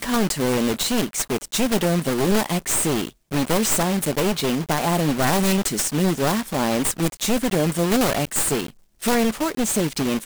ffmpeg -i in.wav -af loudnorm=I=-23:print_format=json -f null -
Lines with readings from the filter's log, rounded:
"input_i" : "-21.5",
"input_tp" : "-4.3",
"input_lra" : "0.8",
"input_thresh" : "-31.6",